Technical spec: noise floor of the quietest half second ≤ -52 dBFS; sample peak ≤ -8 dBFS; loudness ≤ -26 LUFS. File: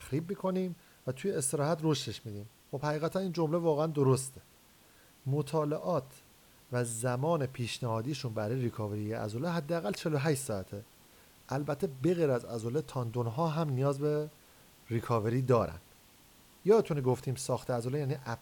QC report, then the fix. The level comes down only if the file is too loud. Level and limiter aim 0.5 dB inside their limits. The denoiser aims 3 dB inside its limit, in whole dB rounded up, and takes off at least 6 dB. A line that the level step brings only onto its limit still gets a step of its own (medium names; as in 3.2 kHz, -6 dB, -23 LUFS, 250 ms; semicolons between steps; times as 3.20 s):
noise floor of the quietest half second -61 dBFS: pass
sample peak -13.5 dBFS: pass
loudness -33.0 LUFS: pass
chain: none needed